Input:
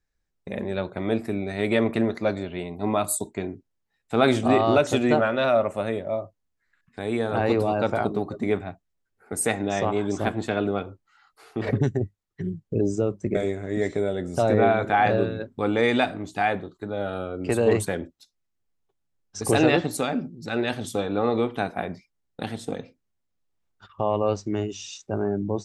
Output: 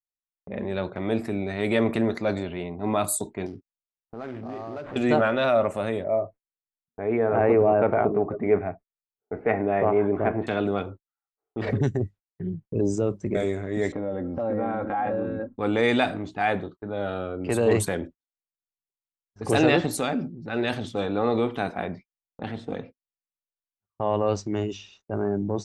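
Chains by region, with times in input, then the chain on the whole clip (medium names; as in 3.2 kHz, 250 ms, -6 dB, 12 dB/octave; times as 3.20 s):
3.46–4.96 s: compression 4:1, threshold -34 dBFS + sample-rate reducer 5.4 kHz, jitter 20%
6.04–10.47 s: Chebyshev low-pass 2.3 kHz, order 4 + small resonant body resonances 430/640 Hz, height 7 dB, ringing for 30 ms
13.92–15.59 s: low-pass 1.3 kHz + comb 3.7 ms, depth 74% + compression 3:1, threshold -25 dBFS
whole clip: gate -42 dBFS, range -34 dB; level-controlled noise filter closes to 610 Hz, open at -21.5 dBFS; transient shaper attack -3 dB, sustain +3 dB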